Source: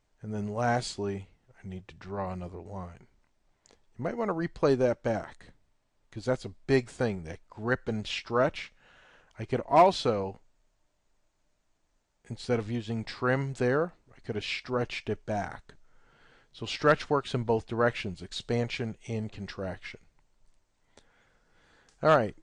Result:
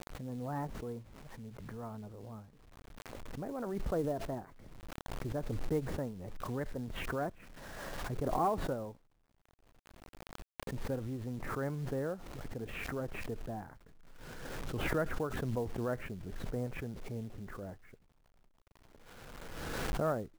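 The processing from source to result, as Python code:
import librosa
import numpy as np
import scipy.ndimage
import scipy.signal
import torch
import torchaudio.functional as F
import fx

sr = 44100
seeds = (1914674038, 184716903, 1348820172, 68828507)

y = fx.speed_glide(x, sr, from_pct=120, to_pct=100)
y = scipy.signal.sosfilt(scipy.signal.butter(4, 1400.0, 'lowpass', fs=sr, output='sos'), y)
y = fx.peak_eq(y, sr, hz=940.0, db=-6.0, octaves=1.5)
y = fx.quant_companded(y, sr, bits=6)
y = fx.pre_swell(y, sr, db_per_s=25.0)
y = y * librosa.db_to_amplitude(-7.5)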